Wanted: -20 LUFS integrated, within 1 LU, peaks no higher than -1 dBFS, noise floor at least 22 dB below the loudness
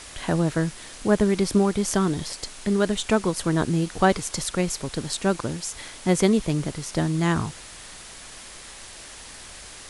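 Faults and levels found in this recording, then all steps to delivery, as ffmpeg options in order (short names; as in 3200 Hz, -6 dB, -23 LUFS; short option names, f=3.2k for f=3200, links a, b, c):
noise floor -42 dBFS; noise floor target -47 dBFS; loudness -24.5 LUFS; peak -4.5 dBFS; loudness target -20.0 LUFS
-> -af "afftdn=nr=6:nf=-42"
-af "volume=4.5dB,alimiter=limit=-1dB:level=0:latency=1"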